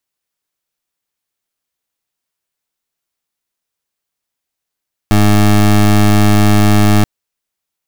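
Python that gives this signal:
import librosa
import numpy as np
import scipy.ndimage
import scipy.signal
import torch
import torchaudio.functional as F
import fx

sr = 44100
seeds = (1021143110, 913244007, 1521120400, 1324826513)

y = fx.pulse(sr, length_s=1.93, hz=104.0, level_db=-8.0, duty_pct=21)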